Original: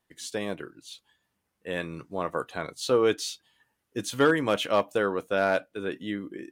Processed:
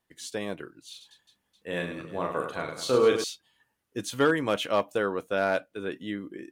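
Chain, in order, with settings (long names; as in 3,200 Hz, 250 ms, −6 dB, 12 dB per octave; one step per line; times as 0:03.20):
0:00.90–0:03.24: reverse bouncing-ball delay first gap 40 ms, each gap 1.6×, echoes 5
level −1.5 dB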